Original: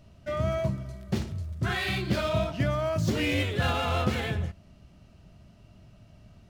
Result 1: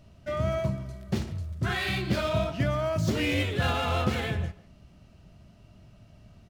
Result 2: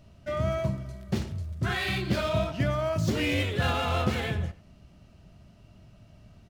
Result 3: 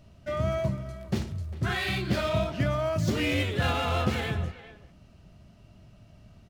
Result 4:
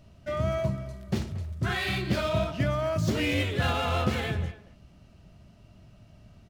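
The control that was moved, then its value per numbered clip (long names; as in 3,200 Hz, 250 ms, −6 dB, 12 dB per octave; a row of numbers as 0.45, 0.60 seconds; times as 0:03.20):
far-end echo of a speakerphone, delay time: 150, 90, 400, 230 milliseconds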